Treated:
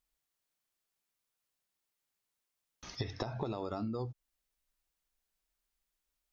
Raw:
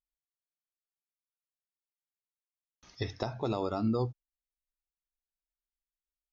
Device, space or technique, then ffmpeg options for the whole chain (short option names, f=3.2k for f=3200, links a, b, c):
serial compression, leveller first: -filter_complex "[0:a]asettb=1/sr,asplit=3[a][b][c];[a]atrim=end=2.964[d];[b]atrim=start=2.96:end=3.65,asetpts=PTS-STARTPTS,afade=t=in:d=0.004:c=qsin,afade=t=out:st=0.686:d=0.004:c=qsin,lowpass=5.5k[e];[c]atrim=start=3.646[f];[d][e]acrossfade=d=0.004:c1=hsin:c2=qsin[g];[g][f]acrossfade=d=0.004:c1=qsin:c2=hsin,acompressor=threshold=-32dB:ratio=6,acompressor=threshold=-43dB:ratio=10,volume=9.5dB"